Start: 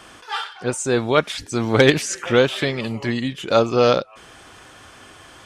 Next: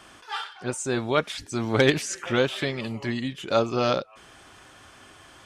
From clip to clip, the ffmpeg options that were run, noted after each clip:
ffmpeg -i in.wav -af "bandreject=frequency=480:width=13,volume=-5.5dB" out.wav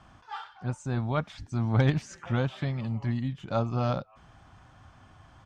ffmpeg -i in.wav -af "firequalizer=gain_entry='entry(130,0);entry(390,-19);entry(750,-8);entry(1700,-16);entry(2600,-19);entry(6300,-20);entry(10000,-30)':delay=0.05:min_phase=1,volume=5.5dB" out.wav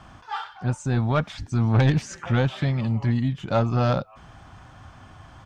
ffmpeg -i in.wav -af "asoftclip=type=tanh:threshold=-20.5dB,volume=8dB" out.wav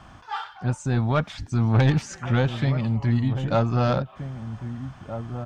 ffmpeg -i in.wav -filter_complex "[0:a]asplit=2[link_01][link_02];[link_02]adelay=1574,volume=-10dB,highshelf=frequency=4000:gain=-35.4[link_03];[link_01][link_03]amix=inputs=2:normalize=0" out.wav

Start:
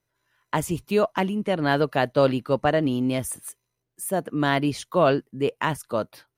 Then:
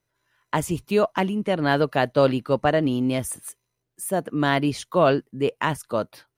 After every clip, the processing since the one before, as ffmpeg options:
ffmpeg -i in.wav -af "equalizer=frequency=13000:width_type=o:width=0.3:gain=-3,volume=1dB" out.wav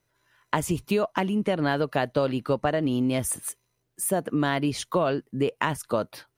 ffmpeg -i in.wav -af "acompressor=threshold=-25dB:ratio=6,volume=4dB" out.wav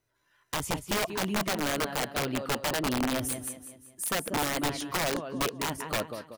ffmpeg -i in.wav -filter_complex "[0:a]asplit=2[link_01][link_02];[link_02]aecho=0:1:189|378|567|756|945:0.316|0.139|0.0612|0.0269|0.0119[link_03];[link_01][link_03]amix=inputs=2:normalize=0,flanger=delay=2.6:depth=1.6:regen=-70:speed=1.8:shape=triangular,aeval=exprs='(mod(13.3*val(0)+1,2)-1)/13.3':channel_layout=same" out.wav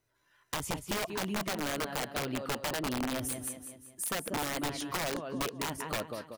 ffmpeg -i in.wav -af "acompressor=threshold=-33dB:ratio=2.5" out.wav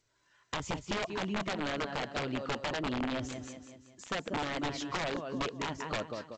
ffmpeg -i in.wav -ar 16000 -c:a g722 out.g722

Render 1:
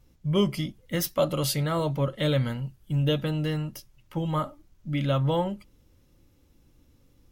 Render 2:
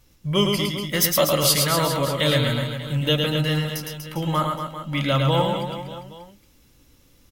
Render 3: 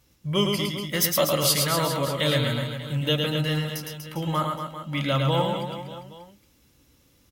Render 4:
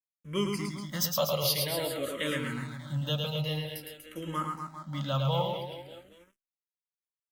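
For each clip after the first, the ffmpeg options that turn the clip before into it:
ffmpeg -i in.wav -filter_complex "[0:a]tiltshelf=frequency=940:gain=-5,asplit=2[link_01][link_02];[link_02]aecho=0:1:110|242|400.4|590.5|818.6:0.631|0.398|0.251|0.158|0.1[link_03];[link_01][link_03]amix=inputs=2:normalize=0,volume=5.5dB" out.wav
ffmpeg -i in.wav -af "highpass=52,volume=-3dB" out.wav
ffmpeg -i in.wav -filter_complex "[0:a]aeval=exprs='sgn(val(0))*max(abs(val(0))-0.00355,0)':channel_layout=same,asplit=2[link_01][link_02];[link_02]afreqshift=-0.5[link_03];[link_01][link_03]amix=inputs=2:normalize=1,volume=-4dB" out.wav

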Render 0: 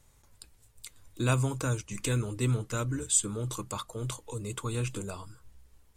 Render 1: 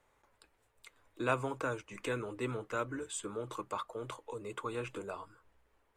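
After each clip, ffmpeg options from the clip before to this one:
ffmpeg -i in.wav -filter_complex "[0:a]acrossover=split=320 2600:gain=0.126 1 0.126[link_01][link_02][link_03];[link_01][link_02][link_03]amix=inputs=3:normalize=0,volume=1dB" out.wav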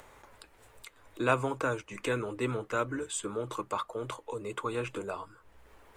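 ffmpeg -i in.wav -af "acompressor=mode=upward:threshold=-49dB:ratio=2.5,volume=5dB" out.wav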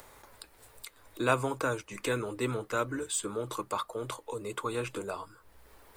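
ffmpeg -i in.wav -af "aexciter=amount=1:drive=9.3:freq=3900" out.wav

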